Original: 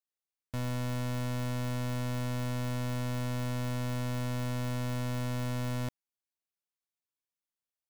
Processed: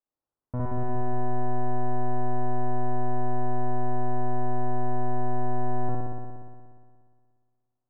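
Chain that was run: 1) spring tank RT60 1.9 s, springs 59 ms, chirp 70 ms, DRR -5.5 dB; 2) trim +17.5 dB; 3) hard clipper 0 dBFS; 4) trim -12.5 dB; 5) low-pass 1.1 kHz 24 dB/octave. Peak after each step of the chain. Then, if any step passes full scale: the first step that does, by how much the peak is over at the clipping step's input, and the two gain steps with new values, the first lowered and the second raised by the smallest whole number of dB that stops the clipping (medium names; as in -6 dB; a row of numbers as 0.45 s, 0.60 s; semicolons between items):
-20.0 dBFS, -2.5 dBFS, -2.5 dBFS, -15.0 dBFS, -16.0 dBFS; nothing clips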